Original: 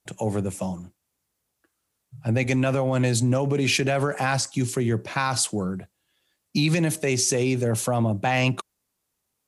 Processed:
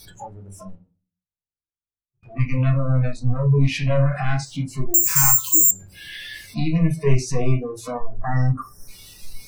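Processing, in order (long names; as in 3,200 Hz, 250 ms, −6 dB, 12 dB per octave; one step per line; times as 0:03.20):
converter with a step at zero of −27.5 dBFS
RIAA equalisation playback
in parallel at +1 dB: downward compressor, threshold −28 dBFS, peak gain reduction 19 dB
on the sum: hum removal 152.7 Hz, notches 38
soft clipping −15 dBFS, distortion −9 dB
0:00.75–0:02.23: noise gate −16 dBFS, range −54 dB
0:04.94–0:05.71: bad sample-rate conversion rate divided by 6×, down filtered, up zero stuff
0:06.96–0:07.52: low-shelf EQ 160 Hz +5 dB
0:08.04–0:08.88: gain on a spectral selection 2,000–5,200 Hz −28 dB
on a send at −1 dB: convolution reverb RT60 0.40 s, pre-delay 7 ms
on the sum: noise reduction from a noise print of the clip's start 25 dB
level −3.5 dB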